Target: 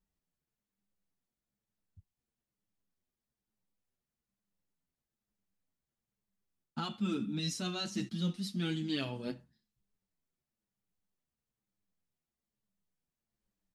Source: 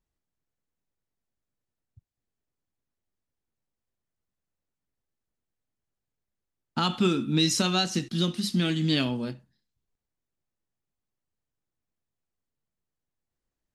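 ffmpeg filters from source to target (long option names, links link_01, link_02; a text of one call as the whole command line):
ffmpeg -i in.wav -filter_complex "[0:a]equalizer=frequency=200:width_type=o:width=0.26:gain=11,areverse,acompressor=threshold=-29dB:ratio=6,areverse,asplit=2[link_01][link_02];[link_02]adelay=7.3,afreqshift=-1.1[link_03];[link_01][link_03]amix=inputs=2:normalize=1" out.wav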